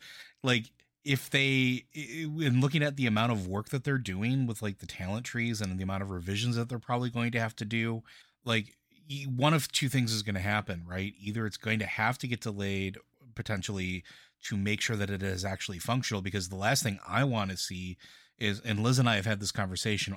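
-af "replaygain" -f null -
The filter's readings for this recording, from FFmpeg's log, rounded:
track_gain = +10.9 dB
track_peak = 0.150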